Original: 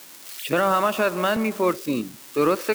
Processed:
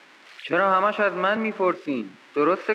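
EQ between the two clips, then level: BPF 200–2600 Hz; bell 1900 Hz +5 dB 1.3 oct; -1.0 dB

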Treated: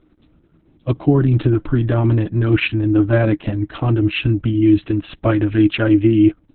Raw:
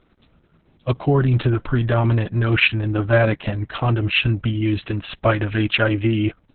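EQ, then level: bell 310 Hz +11.5 dB 0.33 oct; low shelf 440 Hz +7 dB; -4.5 dB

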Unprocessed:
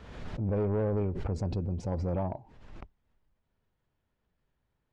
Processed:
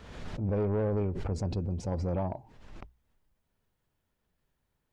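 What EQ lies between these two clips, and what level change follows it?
high shelf 4900 Hz +7.5 dB; notches 60/120 Hz; 0.0 dB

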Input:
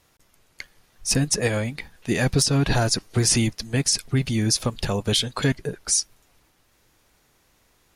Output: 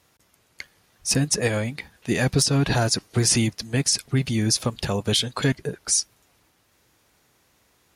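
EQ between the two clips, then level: HPF 64 Hz; 0.0 dB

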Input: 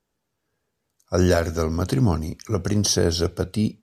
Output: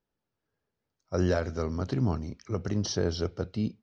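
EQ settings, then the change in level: Chebyshev low-pass 5800 Hz, order 3; air absorption 83 m; -7.5 dB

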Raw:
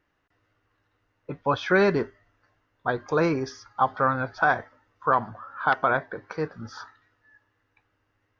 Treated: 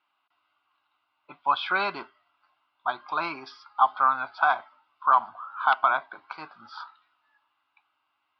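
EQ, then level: HPF 680 Hz 12 dB/oct; steep low-pass 5500 Hz; fixed phaser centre 1800 Hz, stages 6; +4.5 dB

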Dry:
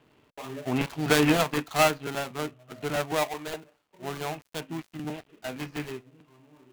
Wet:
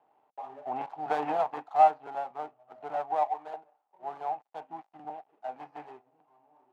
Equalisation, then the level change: band-pass 790 Hz, Q 8.5; +9.0 dB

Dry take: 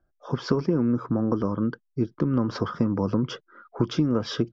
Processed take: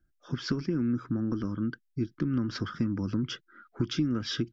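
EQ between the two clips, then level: dynamic EQ 170 Hz, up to -6 dB, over -35 dBFS, Q 0.75; band shelf 690 Hz -16 dB; 0.0 dB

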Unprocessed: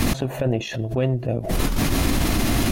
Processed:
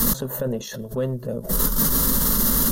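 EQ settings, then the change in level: high shelf 5700 Hz +9.5 dB; bell 14000 Hz +11 dB 0.3 oct; fixed phaser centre 480 Hz, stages 8; 0.0 dB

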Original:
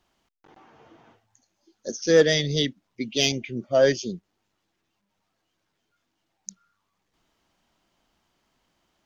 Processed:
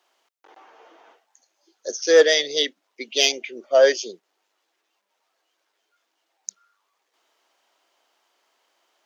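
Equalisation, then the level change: HPF 410 Hz 24 dB/oct; +4.5 dB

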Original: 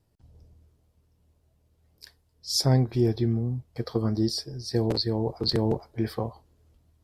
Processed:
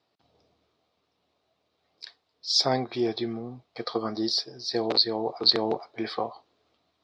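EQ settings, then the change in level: speaker cabinet 310–4600 Hz, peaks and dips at 720 Hz +7 dB, 1200 Hz +8 dB, 2300 Hz +4 dB, 3800 Hz +6 dB; high shelf 3600 Hz +11.5 dB; 0.0 dB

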